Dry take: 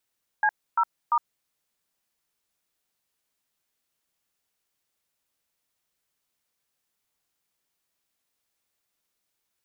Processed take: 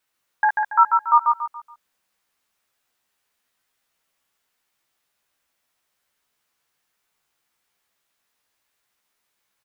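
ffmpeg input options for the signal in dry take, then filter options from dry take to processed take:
-f lavfi -i "aevalsrc='0.0891*clip(min(mod(t,0.344),0.061-mod(t,0.344))/0.002,0,1)*(eq(floor(t/0.344),0)*(sin(2*PI*852*mod(t,0.344))+sin(2*PI*1633*mod(t,0.344)))+eq(floor(t/0.344),1)*(sin(2*PI*941*mod(t,0.344))+sin(2*PI*1336*mod(t,0.344)))+eq(floor(t/0.344),2)*(sin(2*PI*941*mod(t,0.344))+sin(2*PI*1209*mod(t,0.344))))':duration=1.032:sample_rate=44100"
-filter_complex "[0:a]equalizer=frequency=1400:width_type=o:width=2.5:gain=6.5,asplit=2[link_01][link_02];[link_02]adelay=15,volume=-4dB[link_03];[link_01][link_03]amix=inputs=2:normalize=0,aecho=1:1:141|282|423|564:0.631|0.215|0.0729|0.0248"

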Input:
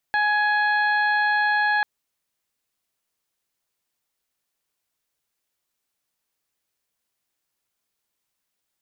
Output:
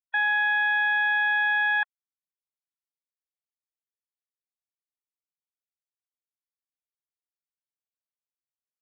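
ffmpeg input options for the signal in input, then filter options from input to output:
-f lavfi -i "aevalsrc='0.0794*sin(2*PI*837*t)+0.1*sin(2*PI*1674*t)+0.0158*sin(2*PI*2511*t)+0.0119*sin(2*PI*3348*t)+0.0141*sin(2*PI*4185*t)':duration=1.69:sample_rate=44100"
-af "afftfilt=real='re*gte(hypot(re,im),0.0447)':imag='im*gte(hypot(re,im),0.0447)':win_size=1024:overlap=0.75,highpass=1200,aresample=8000,aresample=44100"

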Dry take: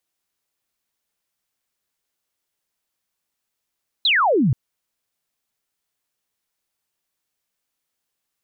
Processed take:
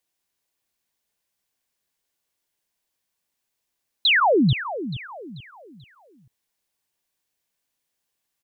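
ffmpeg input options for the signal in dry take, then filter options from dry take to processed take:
-f lavfi -i "aevalsrc='0.2*clip(t/0.002,0,1)*clip((0.48-t)/0.002,0,1)*sin(2*PI*4200*0.48/log(110/4200)*(exp(log(110/4200)*t/0.48)-1))':duration=0.48:sample_rate=44100"
-af "bandreject=frequency=1300:width=9,aecho=1:1:437|874|1311|1748:0.251|0.0929|0.0344|0.0127"

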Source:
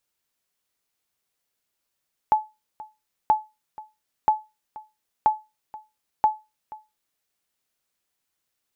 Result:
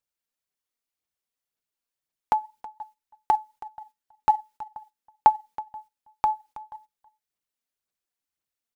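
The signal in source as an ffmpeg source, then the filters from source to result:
-f lavfi -i "aevalsrc='0.316*(sin(2*PI*861*mod(t,0.98))*exp(-6.91*mod(t,0.98)/0.24)+0.0944*sin(2*PI*861*max(mod(t,0.98)-0.48,0))*exp(-6.91*max(mod(t,0.98)-0.48,0)/0.24))':duration=4.9:sample_rate=44100"
-af "agate=range=-11dB:threshold=-50dB:ratio=16:detection=peak,aphaser=in_gain=1:out_gain=1:delay=4.4:decay=0.45:speed=1.9:type=sinusoidal,aecho=1:1:323:0.126"

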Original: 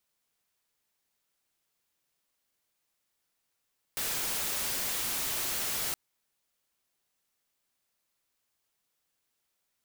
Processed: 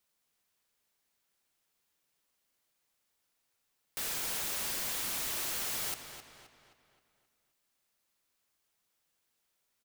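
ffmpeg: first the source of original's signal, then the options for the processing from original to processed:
-f lavfi -i "anoisesrc=color=white:amplitude=0.0411:duration=1.97:sample_rate=44100:seed=1"
-filter_complex "[0:a]bandreject=frequency=60:width_type=h:width=6,bandreject=frequency=120:width_type=h:width=6,alimiter=level_in=7dB:limit=-24dB:level=0:latency=1,volume=-7dB,asplit=2[link_01][link_02];[link_02]adelay=263,lowpass=frequency=5000:poles=1,volume=-8dB,asplit=2[link_03][link_04];[link_04]adelay=263,lowpass=frequency=5000:poles=1,volume=0.48,asplit=2[link_05][link_06];[link_06]adelay=263,lowpass=frequency=5000:poles=1,volume=0.48,asplit=2[link_07][link_08];[link_08]adelay=263,lowpass=frequency=5000:poles=1,volume=0.48,asplit=2[link_09][link_10];[link_10]adelay=263,lowpass=frequency=5000:poles=1,volume=0.48,asplit=2[link_11][link_12];[link_12]adelay=263,lowpass=frequency=5000:poles=1,volume=0.48[link_13];[link_01][link_03][link_05][link_07][link_09][link_11][link_13]amix=inputs=7:normalize=0"

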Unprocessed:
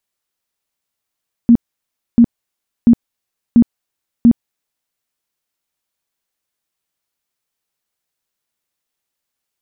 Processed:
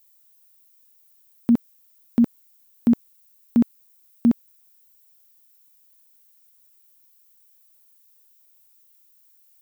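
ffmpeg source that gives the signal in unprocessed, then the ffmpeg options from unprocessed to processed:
-f lavfi -i "aevalsrc='0.668*sin(2*PI*235*mod(t,0.69))*lt(mod(t,0.69),15/235)':duration=3.45:sample_rate=44100"
-af "aemphasis=mode=production:type=riaa"

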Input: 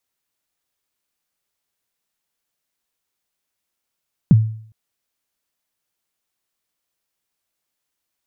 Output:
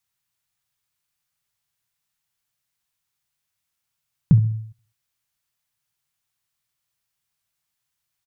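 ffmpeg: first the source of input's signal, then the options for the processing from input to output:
-f lavfi -i "aevalsrc='0.631*pow(10,-3*t/0.56)*sin(2*PI*(210*0.031/log(110/210)*(exp(log(110/210)*min(t,0.031)/0.031)-1)+110*max(t-0.031,0)))':duration=0.41:sample_rate=44100"
-af "equalizer=frequency=125:width_type=o:width=1:gain=10,equalizer=frequency=250:width_type=o:width=1:gain=-8,equalizer=frequency=500:width_type=o:width=1:gain=-8,acompressor=threshold=-12dB:ratio=6,aecho=1:1:67|134|201:0.141|0.0565|0.0226"

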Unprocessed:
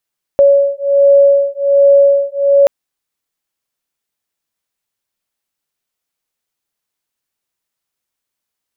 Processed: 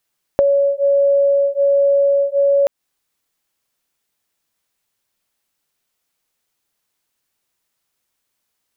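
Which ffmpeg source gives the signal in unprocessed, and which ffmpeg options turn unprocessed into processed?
-f lavfi -i "aevalsrc='0.335*(sin(2*PI*560*t)+sin(2*PI*561.3*t))':duration=2.28:sample_rate=44100"
-filter_complex "[0:a]asplit=2[link_01][link_02];[link_02]alimiter=limit=-12dB:level=0:latency=1:release=17,volume=-1dB[link_03];[link_01][link_03]amix=inputs=2:normalize=0,acompressor=threshold=-13dB:ratio=6"

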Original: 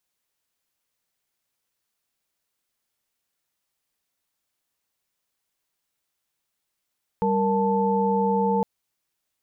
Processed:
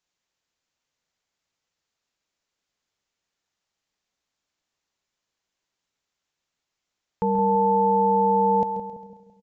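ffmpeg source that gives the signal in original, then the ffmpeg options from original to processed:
-f lavfi -i "aevalsrc='0.0668*(sin(2*PI*196*t)+sin(2*PI*466.16*t)+sin(2*PI*880*t))':duration=1.41:sample_rate=44100"
-filter_complex "[0:a]asplit=2[link_01][link_02];[link_02]aecho=0:1:134|268|402|536|670:0.251|0.131|0.0679|0.0353|0.0184[link_03];[link_01][link_03]amix=inputs=2:normalize=0,aresample=16000,aresample=44100,asplit=2[link_04][link_05];[link_05]adelay=167,lowpass=frequency=880:poles=1,volume=-8dB,asplit=2[link_06][link_07];[link_07]adelay=167,lowpass=frequency=880:poles=1,volume=0.51,asplit=2[link_08][link_09];[link_09]adelay=167,lowpass=frequency=880:poles=1,volume=0.51,asplit=2[link_10][link_11];[link_11]adelay=167,lowpass=frequency=880:poles=1,volume=0.51,asplit=2[link_12][link_13];[link_13]adelay=167,lowpass=frequency=880:poles=1,volume=0.51,asplit=2[link_14][link_15];[link_15]adelay=167,lowpass=frequency=880:poles=1,volume=0.51[link_16];[link_06][link_08][link_10][link_12][link_14][link_16]amix=inputs=6:normalize=0[link_17];[link_04][link_17]amix=inputs=2:normalize=0"

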